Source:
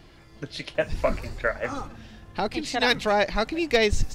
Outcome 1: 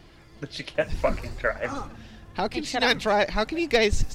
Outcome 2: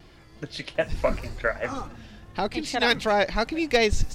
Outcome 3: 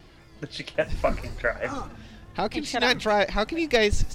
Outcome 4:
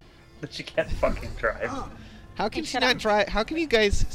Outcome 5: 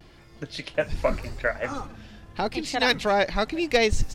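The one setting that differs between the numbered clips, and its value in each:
vibrato, rate: 16, 2.7, 4.9, 0.45, 0.84 Hz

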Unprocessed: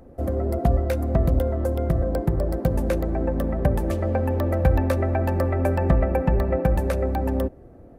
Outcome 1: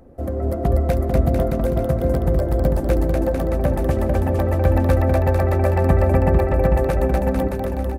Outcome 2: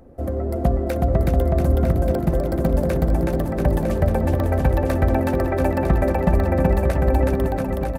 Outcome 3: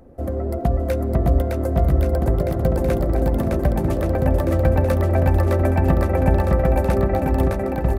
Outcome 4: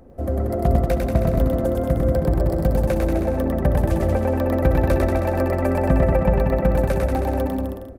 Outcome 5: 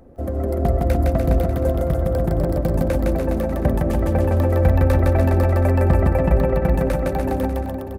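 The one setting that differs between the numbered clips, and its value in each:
bouncing-ball echo, first gap: 0.24, 0.37, 0.61, 0.1, 0.16 s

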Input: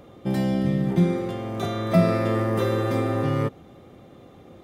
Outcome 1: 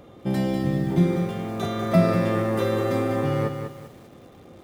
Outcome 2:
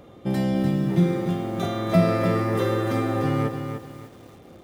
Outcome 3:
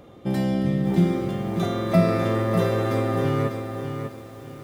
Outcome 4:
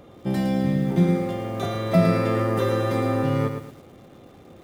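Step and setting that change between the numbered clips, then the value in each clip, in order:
lo-fi delay, time: 0.196, 0.297, 0.597, 0.111 s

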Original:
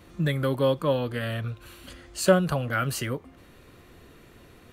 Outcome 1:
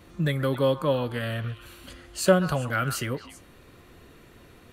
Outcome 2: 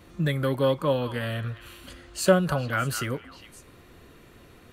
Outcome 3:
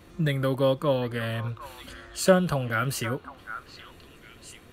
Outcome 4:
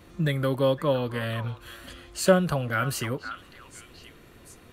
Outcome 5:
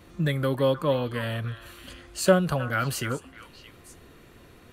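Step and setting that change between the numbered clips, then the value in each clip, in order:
delay with a stepping band-pass, time: 0.129, 0.204, 0.755, 0.515, 0.312 s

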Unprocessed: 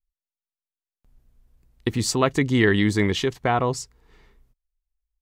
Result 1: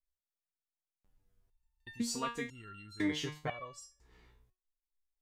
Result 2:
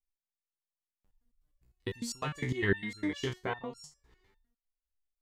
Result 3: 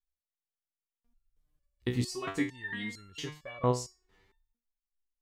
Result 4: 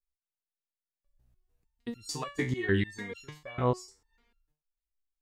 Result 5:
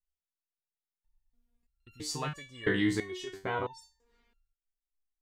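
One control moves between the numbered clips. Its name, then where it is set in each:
stepped resonator, rate: 2, 9.9, 4.4, 6.7, 3 Hz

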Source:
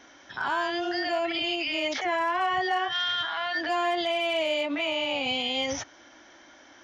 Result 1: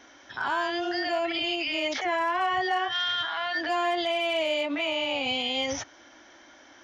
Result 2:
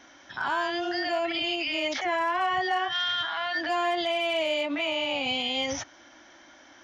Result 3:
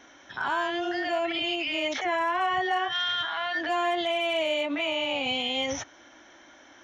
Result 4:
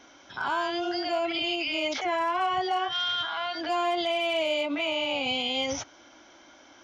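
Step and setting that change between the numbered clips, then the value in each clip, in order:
notch, frequency: 170, 440, 4800, 1800 Hz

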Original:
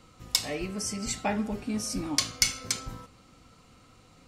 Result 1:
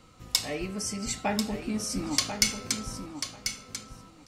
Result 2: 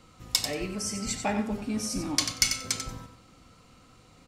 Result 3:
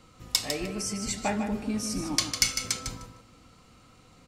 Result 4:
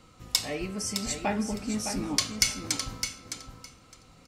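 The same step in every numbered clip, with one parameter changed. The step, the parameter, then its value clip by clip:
feedback echo, time: 1041, 92, 152, 611 ms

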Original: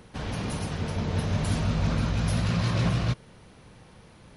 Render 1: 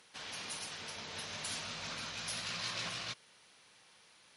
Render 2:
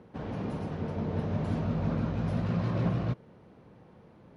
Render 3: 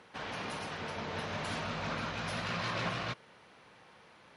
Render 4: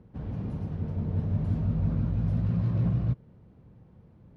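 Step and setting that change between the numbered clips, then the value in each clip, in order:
band-pass, frequency: 5800, 340, 1600, 110 Hz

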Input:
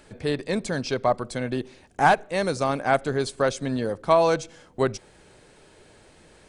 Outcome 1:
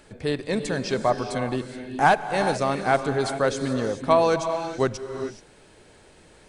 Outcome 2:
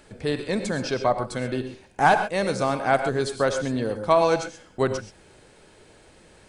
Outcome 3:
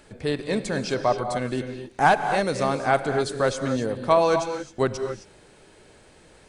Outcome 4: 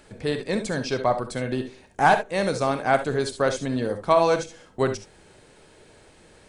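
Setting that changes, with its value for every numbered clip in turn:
non-linear reverb, gate: 450, 150, 290, 90 ms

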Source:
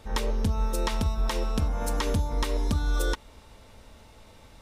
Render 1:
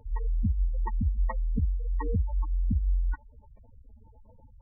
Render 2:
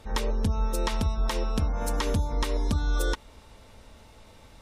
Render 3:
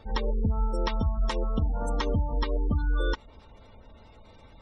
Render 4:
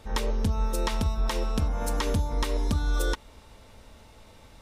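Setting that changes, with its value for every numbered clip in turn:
spectral gate, under each frame's peak: -10, -45, -25, -60 dB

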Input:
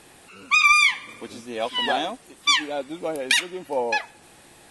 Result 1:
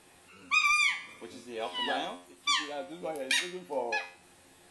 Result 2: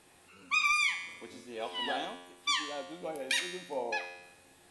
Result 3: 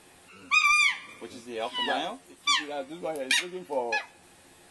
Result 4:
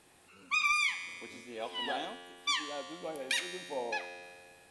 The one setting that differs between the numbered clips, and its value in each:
resonator, decay: 0.41, 0.96, 0.15, 2 s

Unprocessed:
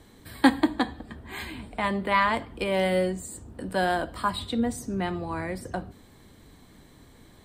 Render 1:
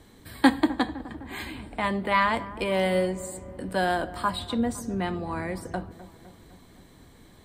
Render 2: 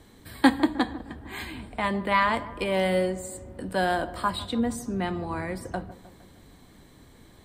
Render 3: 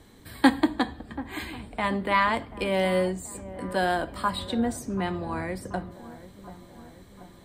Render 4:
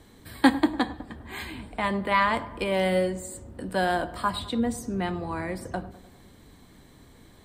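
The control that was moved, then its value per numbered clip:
dark delay, time: 0.255, 0.154, 0.734, 0.101 s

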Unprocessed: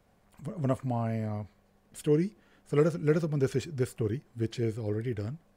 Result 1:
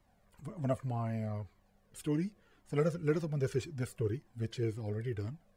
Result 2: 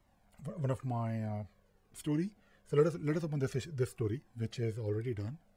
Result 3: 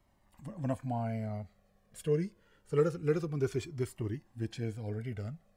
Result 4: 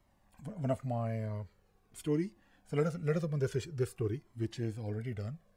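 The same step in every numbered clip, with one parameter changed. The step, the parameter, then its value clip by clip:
cascading flanger, rate: 1.9, 0.97, 0.26, 0.46 Hz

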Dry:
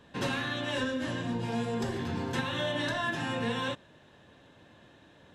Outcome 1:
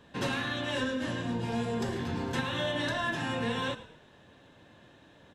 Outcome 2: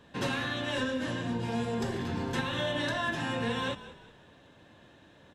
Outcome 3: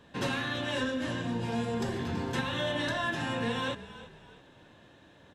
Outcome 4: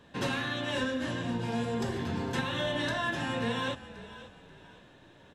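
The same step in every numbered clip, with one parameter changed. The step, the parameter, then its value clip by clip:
frequency-shifting echo, time: 0.107, 0.19, 0.329, 0.535 s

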